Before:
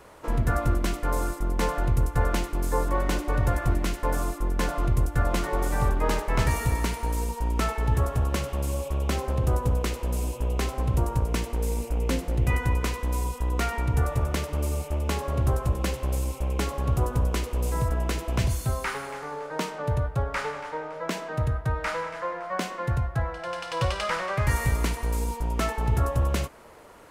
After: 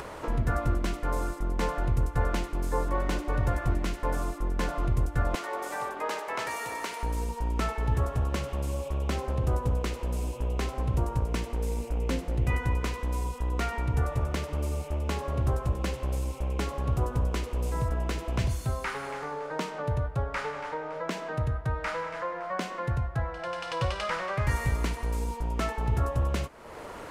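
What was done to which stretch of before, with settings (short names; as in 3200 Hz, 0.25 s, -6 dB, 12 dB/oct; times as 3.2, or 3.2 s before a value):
5.35–7.03 HPF 500 Hz
whole clip: high shelf 9100 Hz -9.5 dB; upward compressor, threshold -26 dBFS; gain -3 dB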